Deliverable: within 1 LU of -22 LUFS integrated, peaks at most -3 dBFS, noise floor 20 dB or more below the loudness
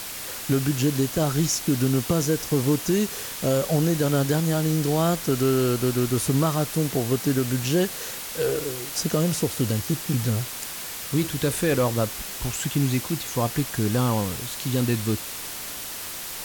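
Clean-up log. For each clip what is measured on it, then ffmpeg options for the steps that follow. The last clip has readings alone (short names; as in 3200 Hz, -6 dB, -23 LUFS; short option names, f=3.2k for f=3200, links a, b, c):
noise floor -35 dBFS; noise floor target -45 dBFS; loudness -24.5 LUFS; peak -11.0 dBFS; loudness target -22.0 LUFS
-> -af "afftdn=nr=10:nf=-35"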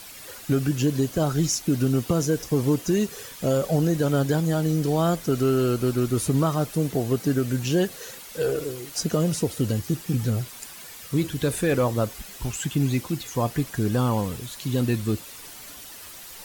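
noise floor -42 dBFS; noise floor target -45 dBFS
-> -af "afftdn=nr=6:nf=-42"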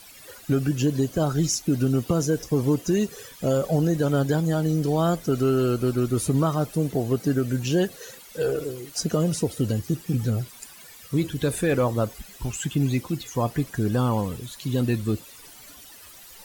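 noise floor -47 dBFS; loudness -25.0 LUFS; peak -12.5 dBFS; loudness target -22.0 LUFS
-> -af "volume=3dB"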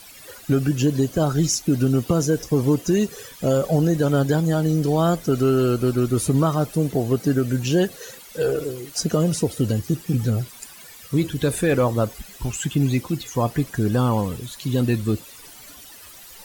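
loudness -22.0 LUFS; peak -9.5 dBFS; noise floor -44 dBFS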